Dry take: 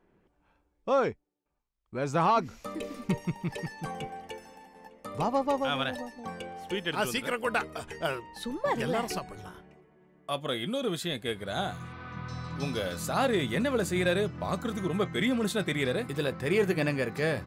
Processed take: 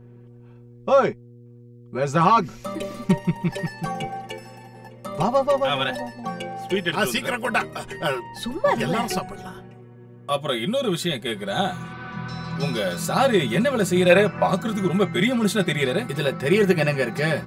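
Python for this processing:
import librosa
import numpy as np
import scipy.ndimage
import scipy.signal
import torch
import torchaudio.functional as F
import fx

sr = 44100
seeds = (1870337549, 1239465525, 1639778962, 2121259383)

y = fx.spec_box(x, sr, start_s=14.1, length_s=0.37, low_hz=440.0, high_hz=2700.0, gain_db=9)
y = y + 0.84 * np.pad(y, (int(5.3 * sr / 1000.0), 0))[:len(y)]
y = fx.dmg_buzz(y, sr, base_hz=120.0, harmonics=4, level_db=-51.0, tilt_db=-6, odd_only=False)
y = y * 10.0 ** (5.0 / 20.0)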